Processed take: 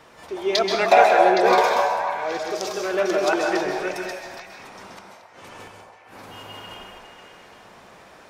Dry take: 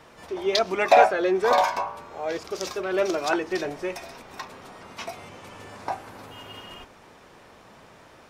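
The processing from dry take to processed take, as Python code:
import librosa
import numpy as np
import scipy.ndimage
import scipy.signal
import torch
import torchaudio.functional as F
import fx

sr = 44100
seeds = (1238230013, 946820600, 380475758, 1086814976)

y = fx.low_shelf(x, sr, hz=230.0, db=-4.5)
y = fx.gate_flip(y, sr, shuts_db=-33.0, range_db=-25, at=(4.13, 6.21), fade=0.02)
y = fx.echo_stepped(y, sr, ms=272, hz=730.0, octaves=1.4, feedback_pct=70, wet_db=-3.0)
y = fx.rev_plate(y, sr, seeds[0], rt60_s=0.54, hf_ratio=1.0, predelay_ms=120, drr_db=2.5)
y = y * librosa.db_to_amplitude(1.5)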